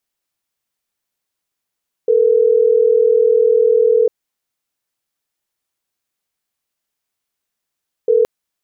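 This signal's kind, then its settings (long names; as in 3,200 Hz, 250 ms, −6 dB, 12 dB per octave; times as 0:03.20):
call progress tone ringback tone, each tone −12 dBFS 6.17 s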